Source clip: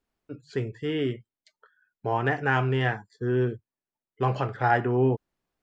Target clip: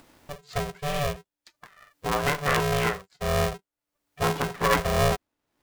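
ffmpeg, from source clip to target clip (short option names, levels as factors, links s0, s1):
-af "acompressor=mode=upward:threshold=0.0158:ratio=2.5,aeval=exprs='val(0)*sgn(sin(2*PI*290*n/s))':c=same"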